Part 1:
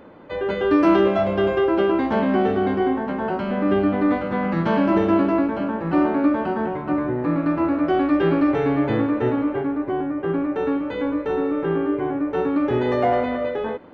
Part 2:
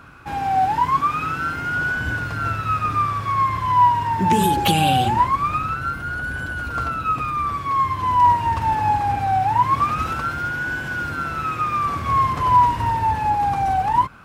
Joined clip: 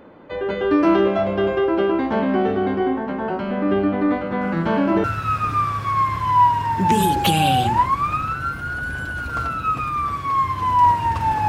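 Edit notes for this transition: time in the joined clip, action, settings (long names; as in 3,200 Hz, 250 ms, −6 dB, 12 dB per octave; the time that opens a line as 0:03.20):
part 1
0:04.41: mix in part 2 from 0:01.82 0.63 s −15.5 dB
0:05.04: continue with part 2 from 0:02.45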